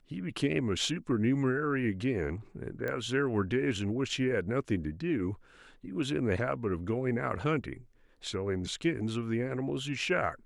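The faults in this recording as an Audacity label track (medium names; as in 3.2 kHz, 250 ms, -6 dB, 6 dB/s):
2.880000	2.880000	pop -22 dBFS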